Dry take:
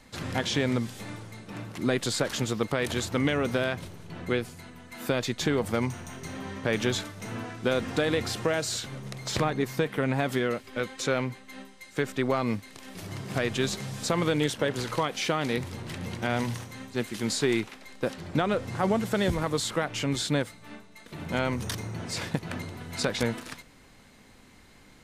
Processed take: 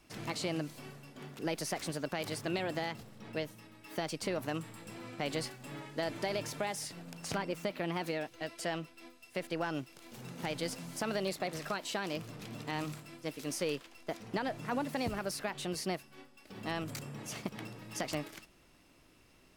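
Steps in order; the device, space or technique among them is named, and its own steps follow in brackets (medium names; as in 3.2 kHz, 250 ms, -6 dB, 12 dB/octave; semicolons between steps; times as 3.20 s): nightcore (tape speed +28%); trim -9 dB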